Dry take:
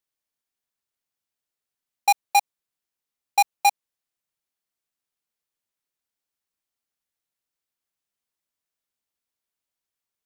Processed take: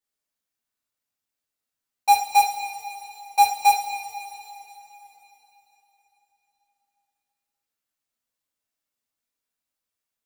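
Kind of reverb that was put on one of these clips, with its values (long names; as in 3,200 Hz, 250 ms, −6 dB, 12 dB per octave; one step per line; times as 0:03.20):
coupled-rooms reverb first 0.33 s, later 3.7 s, from −18 dB, DRR −7.5 dB
level −7 dB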